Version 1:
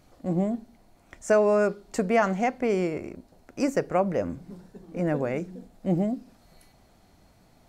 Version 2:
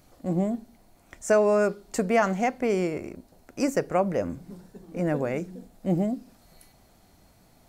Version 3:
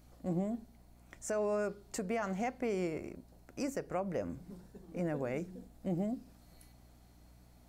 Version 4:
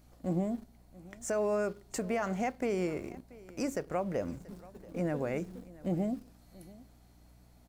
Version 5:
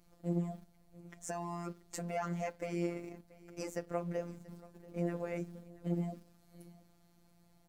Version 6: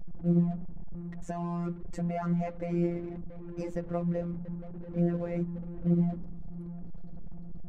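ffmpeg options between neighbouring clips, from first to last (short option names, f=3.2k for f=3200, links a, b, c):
-af "highshelf=f=8.3k:g=9"
-af "alimiter=limit=-19dB:level=0:latency=1:release=193,aeval=exprs='val(0)+0.00224*(sin(2*PI*60*n/s)+sin(2*PI*2*60*n/s)/2+sin(2*PI*3*60*n/s)/3+sin(2*PI*4*60*n/s)/4+sin(2*PI*5*60*n/s)/5)':c=same,volume=-7dB"
-filter_complex "[0:a]asplit=2[a][b];[b]aeval=exprs='val(0)*gte(abs(val(0)),0.00422)':c=same,volume=-8dB[c];[a][c]amix=inputs=2:normalize=0,aecho=1:1:683:0.0891"
-af "afftfilt=real='hypot(re,im)*cos(PI*b)':imag='0':win_size=1024:overlap=0.75,volume=-1.5dB"
-af "aeval=exprs='val(0)+0.5*0.00447*sgn(val(0))':c=same,anlmdn=0.00251,aemphasis=mode=reproduction:type=riaa"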